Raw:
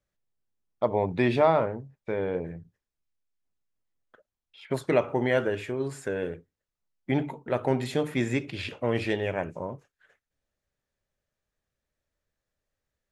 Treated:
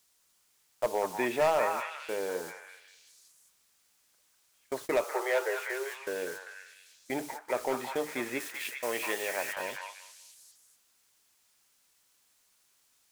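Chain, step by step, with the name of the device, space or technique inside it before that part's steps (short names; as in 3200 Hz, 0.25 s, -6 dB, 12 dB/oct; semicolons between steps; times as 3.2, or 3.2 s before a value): aircraft radio (BPF 400–2400 Hz; hard clip -18 dBFS, distortion -15 dB; white noise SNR 16 dB; gate -40 dBFS, range -21 dB); 5.04–5.97 steep high-pass 360 Hz 96 dB/oct; 8.4–9.53 tilt +2 dB/oct; bell 7300 Hz +7 dB 1.9 oct; delay with a stepping band-pass 0.197 s, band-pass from 1200 Hz, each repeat 0.7 oct, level 0 dB; gain -2.5 dB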